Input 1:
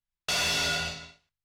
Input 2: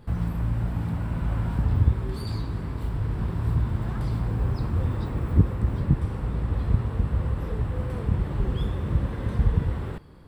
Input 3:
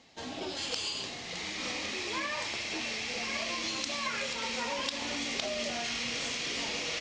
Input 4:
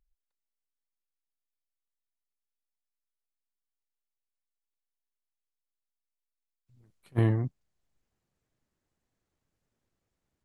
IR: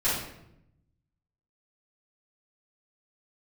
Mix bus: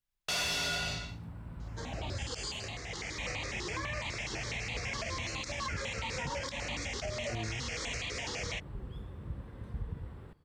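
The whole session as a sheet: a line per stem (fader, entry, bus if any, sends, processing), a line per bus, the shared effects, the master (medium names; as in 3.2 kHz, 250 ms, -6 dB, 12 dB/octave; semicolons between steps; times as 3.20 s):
+1.5 dB, 0.00 s, no send, none
-17.0 dB, 0.35 s, no send, none
+1.5 dB, 1.60 s, no send, stepped phaser 12 Hz 650–1500 Hz
-10.0 dB, 0.15 s, no send, none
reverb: none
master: peak limiter -27.5 dBFS, peak gain reduction 9 dB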